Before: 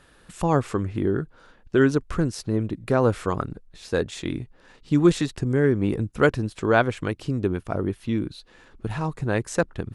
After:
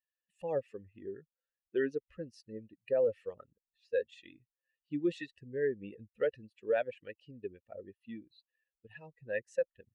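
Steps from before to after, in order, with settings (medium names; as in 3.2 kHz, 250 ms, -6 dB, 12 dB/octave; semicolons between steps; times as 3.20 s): expander on every frequency bin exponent 2; vowel filter e; peak limiter -27.5 dBFS, peak gain reduction 11 dB; trim +5.5 dB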